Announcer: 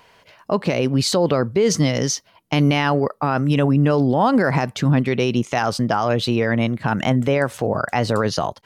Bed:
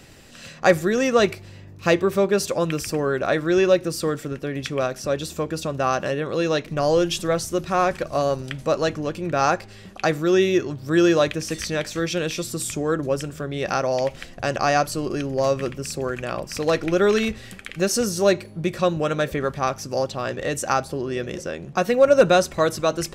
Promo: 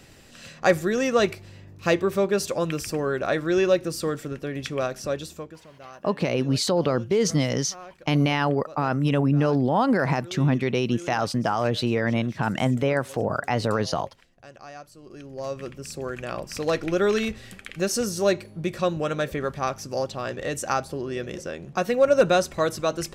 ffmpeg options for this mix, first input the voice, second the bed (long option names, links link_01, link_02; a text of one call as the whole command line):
ffmpeg -i stem1.wav -i stem2.wav -filter_complex "[0:a]adelay=5550,volume=-4.5dB[link_01];[1:a]volume=16dB,afade=type=out:start_time=5.05:duration=0.55:silence=0.105925,afade=type=in:start_time=14.99:duration=1.37:silence=0.112202[link_02];[link_01][link_02]amix=inputs=2:normalize=0" out.wav